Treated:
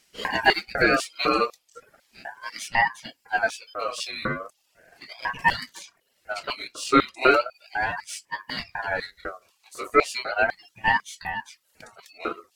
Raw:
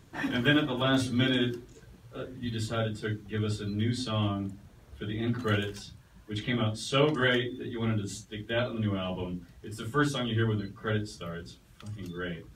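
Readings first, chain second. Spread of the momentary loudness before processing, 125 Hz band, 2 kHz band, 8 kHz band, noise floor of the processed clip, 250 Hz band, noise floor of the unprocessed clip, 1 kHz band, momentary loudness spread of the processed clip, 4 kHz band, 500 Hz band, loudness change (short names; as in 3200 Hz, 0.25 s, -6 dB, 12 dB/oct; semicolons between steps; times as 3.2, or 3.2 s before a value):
16 LU, -12.5 dB, +9.0 dB, +6.0 dB, -69 dBFS, -3.0 dB, -56 dBFS, +13.0 dB, 17 LU, +2.0 dB, +4.5 dB, +5.0 dB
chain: LFO high-pass square 2 Hz 450–2400 Hz; bell 2400 Hz -15 dB 0.55 oct; in parallel at -7.5 dB: crossover distortion -44 dBFS; on the sum: reverb removal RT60 0.67 s; ring modulator with a swept carrier 1100 Hz, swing 25%, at 0.36 Hz; gain +7.5 dB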